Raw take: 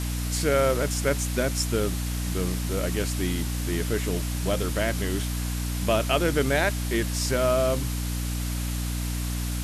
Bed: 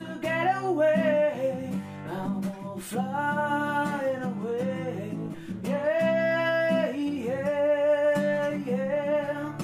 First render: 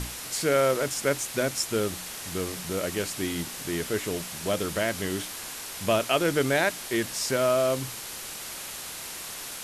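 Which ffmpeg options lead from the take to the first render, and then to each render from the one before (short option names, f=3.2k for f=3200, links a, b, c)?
-af "bandreject=f=60:t=h:w=6,bandreject=f=120:t=h:w=6,bandreject=f=180:t=h:w=6,bandreject=f=240:t=h:w=6,bandreject=f=300:t=h:w=6"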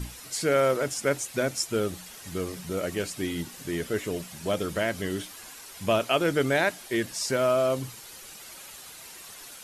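-af "afftdn=nr=10:nf=-38"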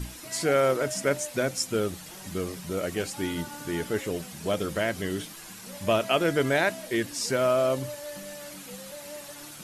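-filter_complex "[1:a]volume=-16.5dB[a];[0:a][a]amix=inputs=2:normalize=0"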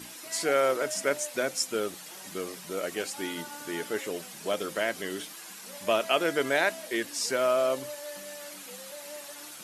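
-af "highpass=240,lowshelf=f=390:g=-5.5"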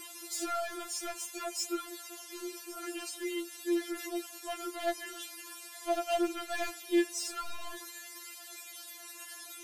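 -af "asoftclip=type=tanh:threshold=-27dB,afftfilt=real='re*4*eq(mod(b,16),0)':imag='im*4*eq(mod(b,16),0)':win_size=2048:overlap=0.75"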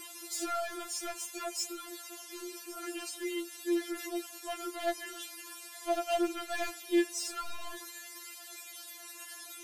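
-filter_complex "[0:a]asettb=1/sr,asplit=3[a][b][c];[a]atrim=end=1.574[d];[b]atrim=start=1.57:end=2.66,asetpts=PTS-STARTPTS,afade=t=in:d=0.004:c=qsin,afade=t=out:st=1.086:d=0.004:c=qsin,acrossover=split=140|3000[e][f][g];[f]acompressor=threshold=-39dB:ratio=6:attack=3.2:release=140:knee=2.83:detection=peak[h];[e][h][g]amix=inputs=3:normalize=0[i];[c]atrim=start=2.656[j];[d][i]acrossfade=d=0.004:c1=hsin:c2=qsin[k];[k][j]acrossfade=d=0.004:c1=qsin:c2=hsin"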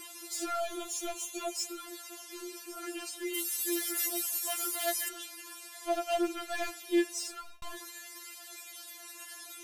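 -filter_complex "[0:a]asplit=3[a][b][c];[a]afade=t=out:st=0.59:d=0.02[d];[b]aecho=1:1:3.2:0.63,afade=t=in:st=0.59:d=0.02,afade=t=out:st=1.52:d=0.02[e];[c]afade=t=in:st=1.52:d=0.02[f];[d][e][f]amix=inputs=3:normalize=0,asplit=3[g][h][i];[g]afade=t=out:st=3.33:d=0.02[j];[h]aemphasis=mode=production:type=riaa,afade=t=in:st=3.33:d=0.02,afade=t=out:st=5.08:d=0.02[k];[i]afade=t=in:st=5.08:d=0.02[l];[j][k][l]amix=inputs=3:normalize=0,asplit=2[m][n];[m]atrim=end=7.62,asetpts=PTS-STARTPTS,afade=t=out:st=7.19:d=0.43[o];[n]atrim=start=7.62,asetpts=PTS-STARTPTS,afade=t=in:d=0.004:c=hsin[p];[o][p]concat=n=2:v=0:a=1"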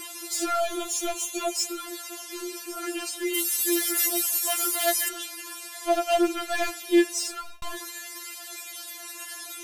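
-af "volume=8dB"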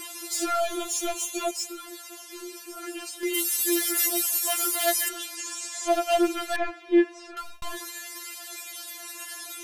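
-filter_complex "[0:a]asettb=1/sr,asplit=3[a][b][c];[a]atrim=end=5.354[d];[b]atrim=start=5.35:end=5.88,asetpts=PTS-STARTPTS,afade=t=in:d=0.004:c=qsin,afade=t=out:st=0.526:d=0.004:c=qsin,lowpass=f=7.1k:t=q:w=3.8[e];[c]atrim=start=5.876[f];[d][e]acrossfade=d=0.004:c1=hsin:c2=qsin[g];[g][f]acrossfade=d=0.004:c1=qsin:c2=hsin,asettb=1/sr,asplit=3[h][i][j];[h]atrim=end=6.564[k];[i]atrim=start=6.56:end=7.37,asetpts=PTS-STARTPTS,afade=t=in:d=0.004:c=qsin,afade=t=out:st=0.806:d=0.004:c=qsin,lowpass=1.9k[l];[j]atrim=start=7.366[m];[k][l]acrossfade=d=0.004:c1=hsin:c2=qsin[n];[n][m]acrossfade=d=0.004:c1=qsin:c2=hsin,asplit=3[o][p][q];[o]atrim=end=1.512[r];[p]atrim=start=1.508:end=3.232,asetpts=PTS-STARTPTS,volume=-4.5dB[s];[q]atrim=start=3.228[t];[r][s]acrossfade=d=0.004:c1=hsin:c2=hsin[u];[u][t]acrossfade=d=0.004:c1=hsin:c2=hsin"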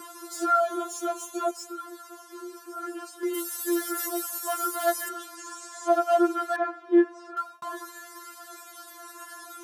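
-af "highpass=f=190:w=0.5412,highpass=f=190:w=1.3066,highshelf=f=1.8k:t=q:w=3:g=-8.5"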